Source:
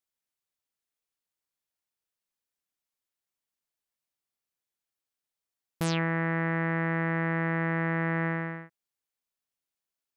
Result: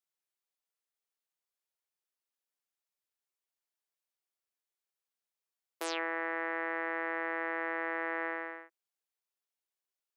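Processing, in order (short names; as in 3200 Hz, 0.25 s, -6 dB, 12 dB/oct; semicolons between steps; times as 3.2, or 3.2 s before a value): elliptic high-pass 360 Hz, stop band 60 dB; gain -3 dB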